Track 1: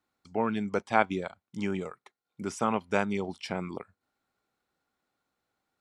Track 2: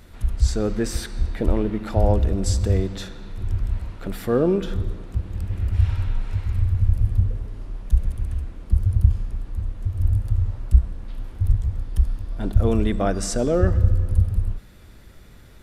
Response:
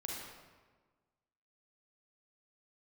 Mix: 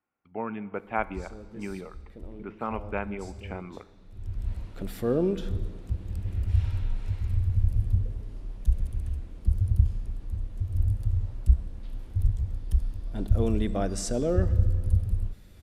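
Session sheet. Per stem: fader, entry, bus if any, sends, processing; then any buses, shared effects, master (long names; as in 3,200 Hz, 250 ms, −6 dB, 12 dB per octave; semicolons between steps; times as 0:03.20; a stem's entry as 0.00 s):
−5.0 dB, 0.00 s, send −14.5 dB, Chebyshev low-pass filter 2,700 Hz, order 4
−5.5 dB, 0.75 s, send −24 dB, parametric band 1,300 Hz −5 dB 1.5 octaves; automatic ducking −19 dB, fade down 1.00 s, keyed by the first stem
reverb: on, RT60 1.4 s, pre-delay 34 ms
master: no processing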